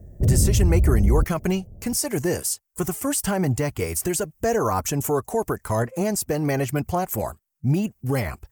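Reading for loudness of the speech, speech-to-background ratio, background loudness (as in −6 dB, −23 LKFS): −24.5 LKFS, −3.0 dB, −21.5 LKFS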